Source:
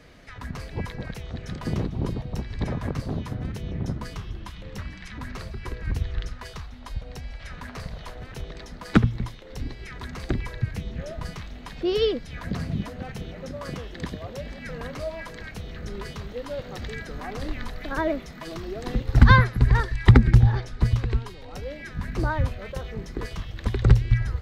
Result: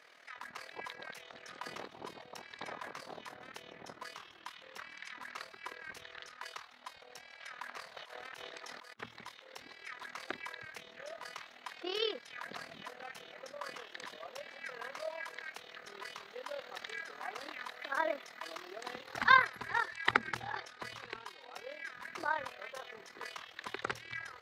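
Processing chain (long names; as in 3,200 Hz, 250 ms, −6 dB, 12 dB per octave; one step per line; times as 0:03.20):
high-pass filter 870 Hz 12 dB per octave
high-shelf EQ 3,200 Hz −5.5 dB
0:07.96–0:09.00: compressor whose output falls as the input rises −52 dBFS, ratio −1
amplitude modulation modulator 39 Hz, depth 55%
level +1 dB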